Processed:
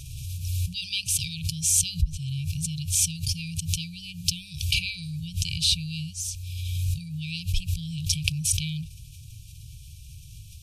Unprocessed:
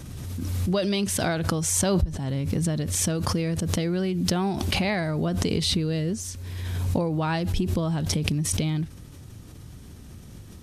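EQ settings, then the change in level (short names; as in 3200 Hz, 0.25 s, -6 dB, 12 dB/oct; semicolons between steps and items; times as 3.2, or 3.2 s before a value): brick-wall FIR band-stop 160–2300 Hz; bell 130 Hz -4 dB 2.4 oct; +3.5 dB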